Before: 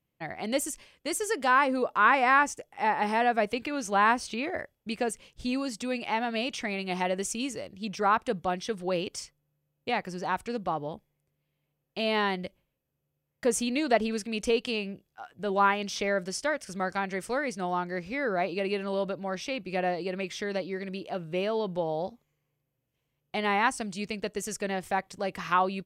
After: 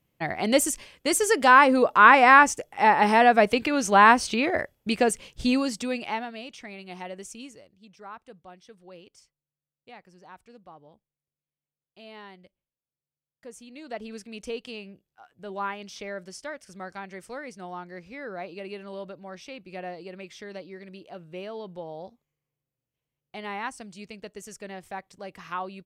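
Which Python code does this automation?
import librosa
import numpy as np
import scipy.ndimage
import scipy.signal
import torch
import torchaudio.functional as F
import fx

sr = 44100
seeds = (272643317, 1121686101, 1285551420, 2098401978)

y = fx.gain(x, sr, db=fx.line((5.49, 7.5), (6.15, -1.0), (6.36, -9.0), (7.39, -9.0), (7.87, -18.0), (13.66, -18.0), (14.14, -8.0)))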